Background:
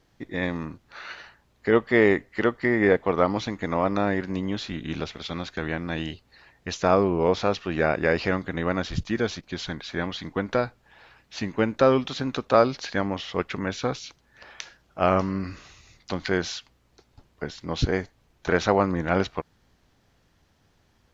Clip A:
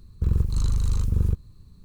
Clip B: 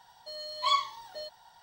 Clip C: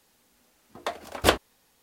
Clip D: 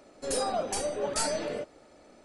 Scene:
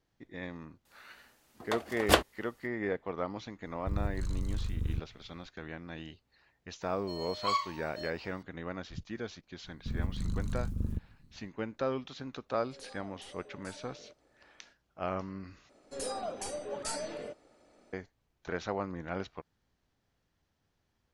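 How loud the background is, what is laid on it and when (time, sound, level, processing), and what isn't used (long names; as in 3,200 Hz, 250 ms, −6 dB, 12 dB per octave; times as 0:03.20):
background −14 dB
0:00.85: mix in C −3 dB
0:03.65: mix in A −11.5 dB
0:06.81: mix in B −3.5 dB + notch filter 3,400 Hz, Q 9.6
0:09.64: mix in A −8.5 dB + amplitude modulation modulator 150 Hz, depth 70%
0:12.49: mix in D −14 dB + downward compressor 1.5 to 1, threshold −49 dBFS
0:15.69: overwrite with D −7.5 dB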